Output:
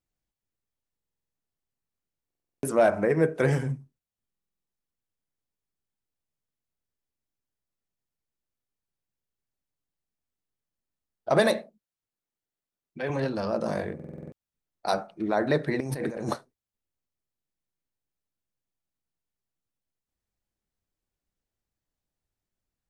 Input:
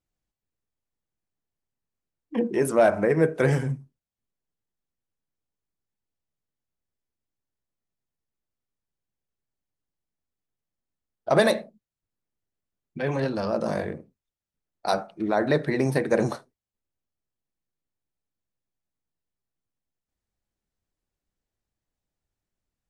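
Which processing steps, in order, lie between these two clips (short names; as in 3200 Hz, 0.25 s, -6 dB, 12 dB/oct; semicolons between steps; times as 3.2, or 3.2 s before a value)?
11.6–13.1 low shelf 170 Hz -11.5 dB; 15.8–16.34 negative-ratio compressor -30 dBFS, ratio -1; stuck buffer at 0.96/2.26/4.28/13.95, samples 2048, times 7; gain -2 dB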